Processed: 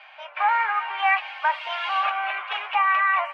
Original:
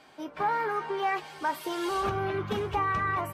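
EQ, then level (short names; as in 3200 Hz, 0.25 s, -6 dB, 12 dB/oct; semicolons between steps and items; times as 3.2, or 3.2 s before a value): steep high-pass 630 Hz 48 dB/oct; synth low-pass 2600 Hz, resonance Q 3.5; air absorption 59 m; +6.0 dB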